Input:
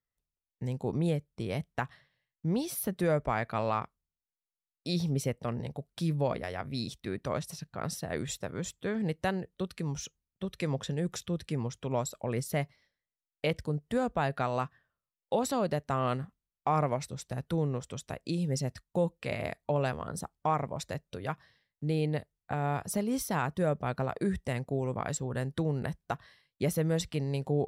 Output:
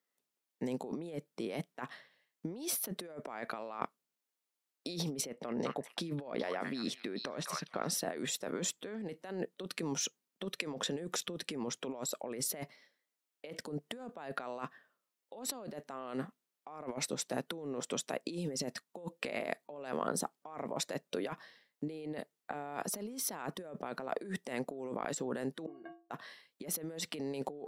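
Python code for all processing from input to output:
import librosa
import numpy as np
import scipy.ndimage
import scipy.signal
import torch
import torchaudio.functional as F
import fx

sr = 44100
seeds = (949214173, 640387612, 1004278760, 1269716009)

y = fx.chain(x, sr, fx.high_shelf(hz=6900.0, db=-10.0),
    fx.echo_stepped(ms=208, hz=1500.0, octaves=1.4, feedback_pct=70, wet_db=-6.5), at=(5.21, 7.92))
y = fx.chain(y, sr, fx.lowpass(hz=1500.0, slope=12),
    fx.stiff_resonator(f0_hz=330.0, decay_s=0.38, stiffness=0.03), at=(25.66, 26.11))
y = scipy.signal.sosfilt(scipy.signal.butter(4, 240.0, 'highpass', fs=sr, output='sos'), y)
y = fx.low_shelf(y, sr, hz=430.0, db=3.5)
y = fx.over_compress(y, sr, threshold_db=-40.0, ratio=-1.0)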